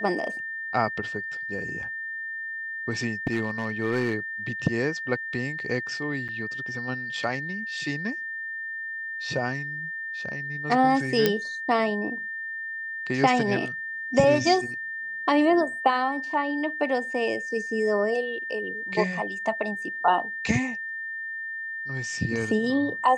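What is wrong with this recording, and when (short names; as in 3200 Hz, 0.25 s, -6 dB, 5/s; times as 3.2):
tone 1800 Hz -31 dBFS
3.27–4.14 clipped -19.5 dBFS
6.28–6.29 gap 7 ms
11.26 pop -6 dBFS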